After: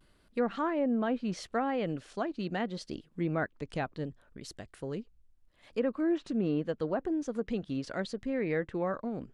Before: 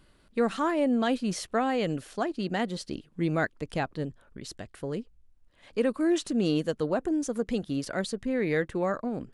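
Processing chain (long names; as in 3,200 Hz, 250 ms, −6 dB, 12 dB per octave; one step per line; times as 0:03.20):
treble cut that deepens with the level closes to 1,800 Hz, closed at −21.5 dBFS
pitch vibrato 0.75 Hz 54 cents
level −4 dB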